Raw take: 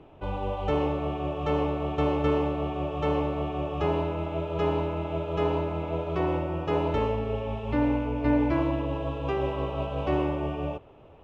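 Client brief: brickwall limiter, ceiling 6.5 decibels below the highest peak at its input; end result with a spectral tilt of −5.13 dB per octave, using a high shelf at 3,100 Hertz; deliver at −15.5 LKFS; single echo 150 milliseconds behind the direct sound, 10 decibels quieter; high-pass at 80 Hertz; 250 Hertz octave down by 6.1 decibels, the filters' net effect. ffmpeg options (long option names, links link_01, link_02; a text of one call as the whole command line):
ffmpeg -i in.wav -af "highpass=80,equalizer=frequency=250:width_type=o:gain=-8.5,highshelf=frequency=3100:gain=7.5,alimiter=limit=-22dB:level=0:latency=1,aecho=1:1:150:0.316,volume=16dB" out.wav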